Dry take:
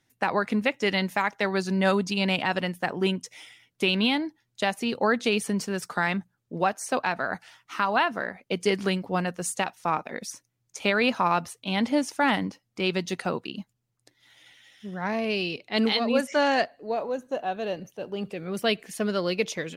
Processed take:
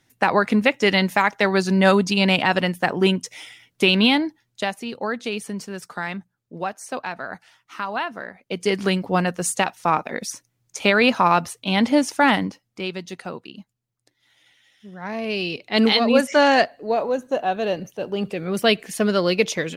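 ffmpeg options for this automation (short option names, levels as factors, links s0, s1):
-af "volume=23.7,afade=t=out:st=4.17:d=0.67:silence=0.316228,afade=t=in:st=8.37:d=0.68:silence=0.334965,afade=t=out:st=12.24:d=0.69:silence=0.298538,afade=t=in:st=14.98:d=0.92:silence=0.281838"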